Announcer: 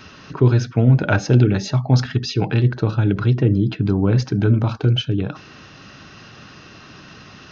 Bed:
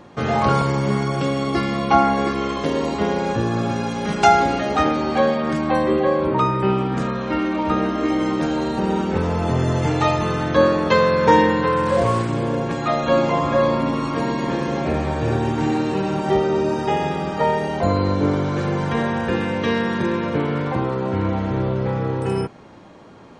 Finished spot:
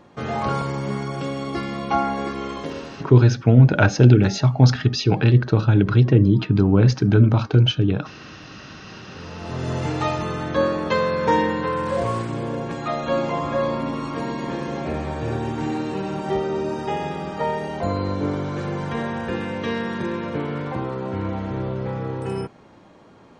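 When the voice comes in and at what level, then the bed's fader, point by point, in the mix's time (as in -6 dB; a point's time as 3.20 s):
2.70 s, +1.5 dB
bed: 2.59 s -6 dB
3.38 s -29 dB
8.82 s -29 dB
9.72 s -5 dB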